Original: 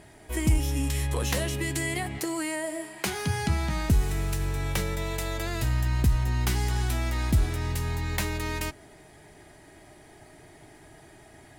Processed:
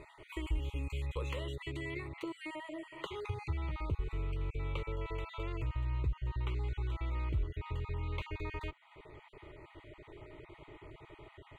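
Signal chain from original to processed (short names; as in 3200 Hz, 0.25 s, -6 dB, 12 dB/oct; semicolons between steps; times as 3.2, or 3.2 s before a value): random spectral dropouts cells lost 28%; high shelf 5500 Hz +8.5 dB, from 1.6 s +2 dB, from 3.6 s -4 dB; compressor 2:1, threshold -45 dBFS, peak gain reduction 15 dB; air absorption 180 m; fixed phaser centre 1100 Hz, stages 8; gain +4.5 dB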